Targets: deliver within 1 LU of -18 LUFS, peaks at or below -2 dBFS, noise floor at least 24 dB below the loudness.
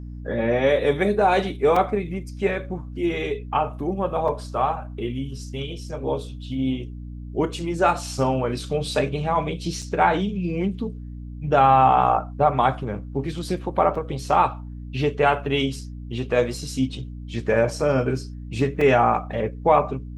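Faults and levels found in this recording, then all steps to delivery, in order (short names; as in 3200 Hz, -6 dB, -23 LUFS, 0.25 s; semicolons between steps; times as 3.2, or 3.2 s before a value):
dropouts 5; longest dropout 3.8 ms; hum 60 Hz; harmonics up to 300 Hz; hum level -32 dBFS; loudness -23.0 LUFS; peak -4.5 dBFS; loudness target -18.0 LUFS
-> interpolate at 1.76/4.28/9.82/13.95/18.81, 3.8 ms; de-hum 60 Hz, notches 5; gain +5 dB; limiter -2 dBFS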